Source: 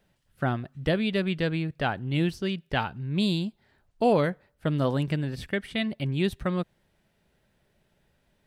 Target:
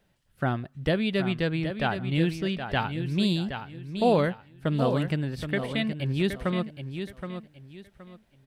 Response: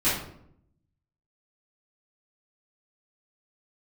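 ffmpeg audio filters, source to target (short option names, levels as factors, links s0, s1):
-af "aecho=1:1:771|1542|2313:0.376|0.101|0.0274"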